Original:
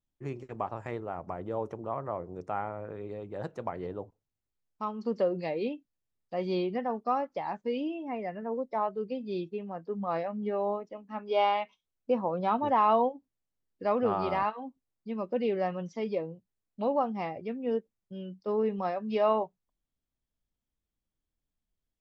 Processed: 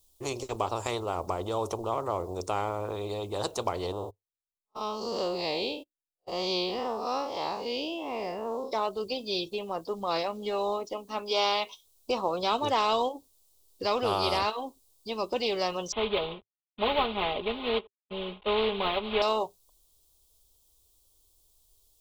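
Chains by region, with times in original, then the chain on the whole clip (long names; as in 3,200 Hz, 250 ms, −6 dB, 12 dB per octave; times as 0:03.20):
0:03.92–0:08.72: spectrum smeared in time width 123 ms + noise gate −52 dBFS, range −34 dB
0:15.92–0:19.22: variable-slope delta modulation 16 kbit/s + comb filter 4.8 ms, depth 93%
whole clip: drawn EQ curve 100 Hz 0 dB, 150 Hz −18 dB, 250 Hz −11 dB, 400 Hz +3 dB, 620 Hz 0 dB, 1,100 Hz 0 dB, 1,700 Hz −17 dB, 3,700 Hz +9 dB, 6,200 Hz +10 dB, 9,300 Hz +14 dB; every bin compressed towards the loudest bin 2 to 1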